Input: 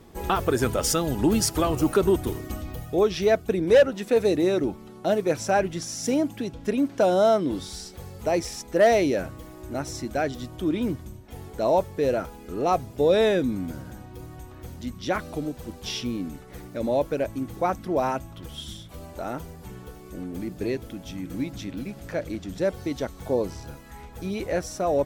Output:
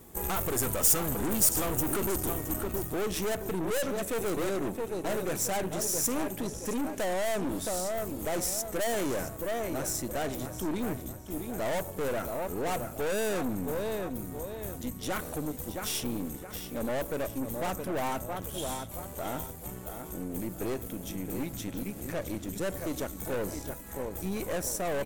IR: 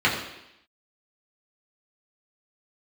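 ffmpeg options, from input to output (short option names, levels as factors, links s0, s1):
-filter_complex "[0:a]asplit=2[s0][s1];[s1]adelay=669,lowpass=f=5000:p=1,volume=0.335,asplit=2[s2][s3];[s3]adelay=669,lowpass=f=5000:p=1,volume=0.36,asplit=2[s4][s5];[s5]adelay=669,lowpass=f=5000:p=1,volume=0.36,asplit=2[s6][s7];[s7]adelay=669,lowpass=f=5000:p=1,volume=0.36[s8];[s0][s2][s4][s6][s8]amix=inputs=5:normalize=0,asplit=2[s9][s10];[1:a]atrim=start_sample=2205[s11];[s10][s11]afir=irnorm=-1:irlink=0,volume=0.02[s12];[s9][s12]amix=inputs=2:normalize=0,aeval=exprs='(tanh(28.2*val(0)+0.6)-tanh(0.6))/28.2':c=same,aexciter=amount=6.4:drive=1.5:freq=6900"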